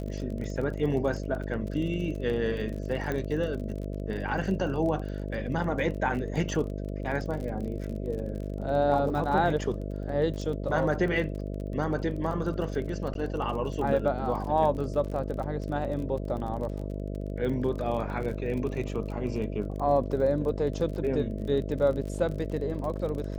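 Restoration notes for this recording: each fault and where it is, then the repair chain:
buzz 50 Hz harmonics 13 -34 dBFS
crackle 33 per s -35 dBFS
3.12 s: pop -19 dBFS
13.14–13.15 s: dropout 12 ms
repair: de-click; de-hum 50 Hz, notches 13; interpolate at 13.14 s, 12 ms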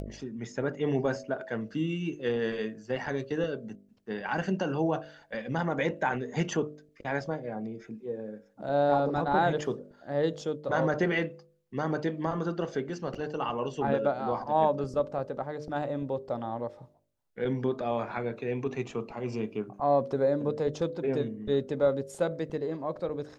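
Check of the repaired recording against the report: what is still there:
nothing left

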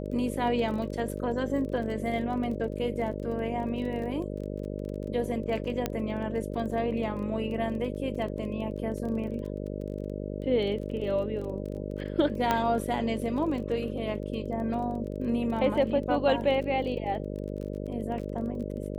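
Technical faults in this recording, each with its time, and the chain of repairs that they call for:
buzz 50 Hz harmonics 12 -35 dBFS
crackle 23 per s -37 dBFS
5.86 s: pop -13 dBFS
12.51 s: pop -11 dBFS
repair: de-click; de-hum 50 Hz, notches 12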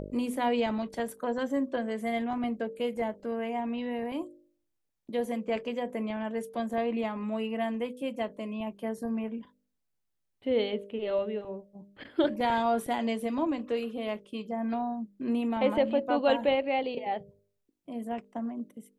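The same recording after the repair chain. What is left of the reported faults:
nothing left

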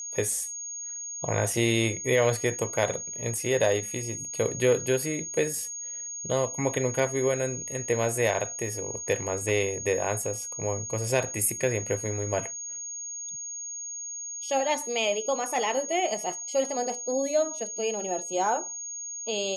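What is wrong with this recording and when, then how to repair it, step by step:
whine 6.6 kHz -34 dBFS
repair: band-stop 6.6 kHz, Q 30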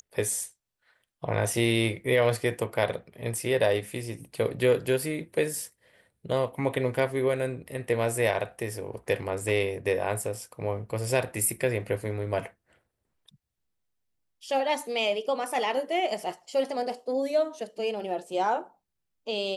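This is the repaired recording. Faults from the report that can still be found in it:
nothing left

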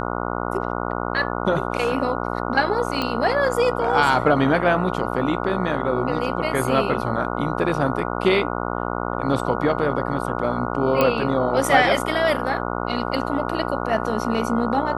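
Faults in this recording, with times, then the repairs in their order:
buzz 60 Hz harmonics 24 -26 dBFS
3.02 s: pop -11 dBFS
11.01 s: pop -6 dBFS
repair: de-click; de-hum 60 Hz, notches 24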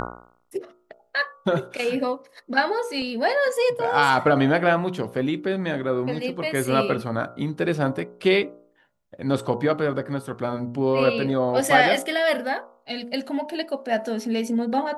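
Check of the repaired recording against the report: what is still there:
nothing left

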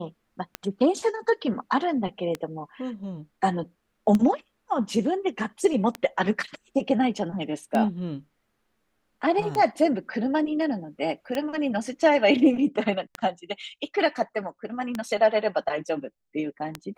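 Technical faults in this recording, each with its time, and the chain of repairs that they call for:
tick 33 1/3 rpm -13 dBFS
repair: de-click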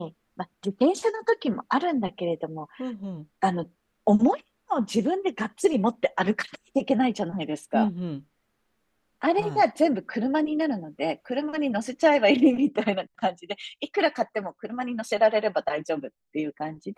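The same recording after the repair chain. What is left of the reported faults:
nothing left

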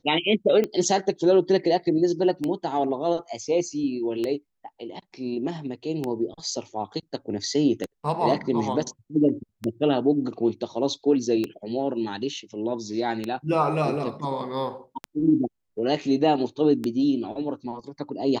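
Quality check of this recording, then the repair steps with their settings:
tick 33 1/3 rpm -14 dBFS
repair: de-click

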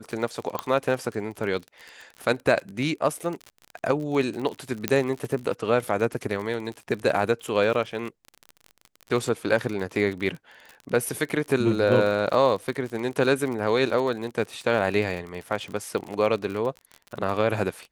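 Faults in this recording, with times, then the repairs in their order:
crackle 41 per s -31 dBFS
0.59 s: pop -12 dBFS
4.88 s: pop -7 dBFS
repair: de-click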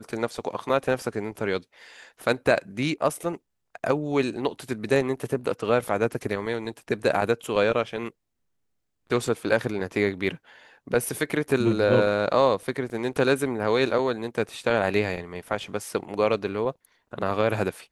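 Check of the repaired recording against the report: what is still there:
nothing left

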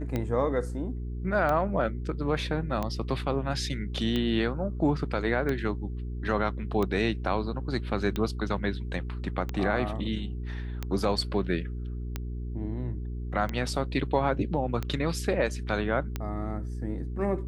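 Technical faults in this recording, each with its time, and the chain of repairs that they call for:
hum 60 Hz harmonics 7 -34 dBFS
tick 45 rpm -17 dBFS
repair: de-click; de-hum 60 Hz, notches 7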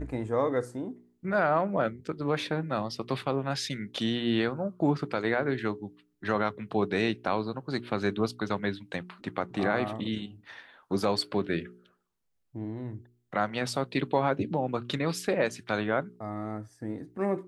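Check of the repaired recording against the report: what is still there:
nothing left

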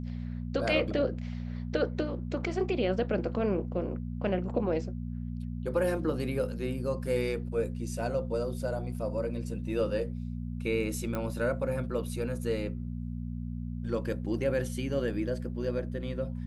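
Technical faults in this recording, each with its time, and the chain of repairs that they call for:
hum 60 Hz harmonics 4 -36 dBFS
11.15 s: pop -20 dBFS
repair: de-click; de-hum 60 Hz, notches 4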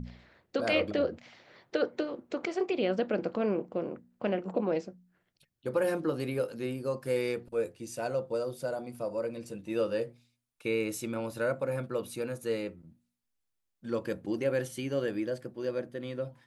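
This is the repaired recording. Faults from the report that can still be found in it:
nothing left

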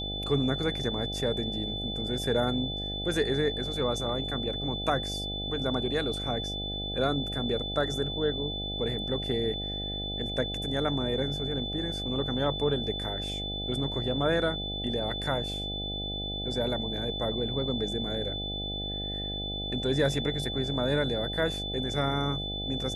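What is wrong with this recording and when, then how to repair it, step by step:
buzz 50 Hz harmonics 16 -37 dBFS
whine 3.5 kHz -34 dBFS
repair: de-hum 50 Hz, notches 16; band-stop 3.5 kHz, Q 30

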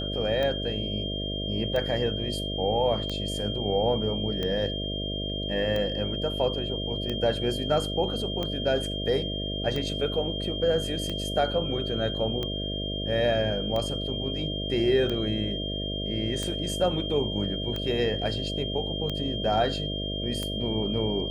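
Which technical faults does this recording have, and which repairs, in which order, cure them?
buzz 50 Hz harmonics 13 -33 dBFS
tick 45 rpm -18 dBFS
whine 3.2 kHz -33 dBFS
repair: de-click; band-stop 3.2 kHz, Q 30; de-hum 50 Hz, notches 13

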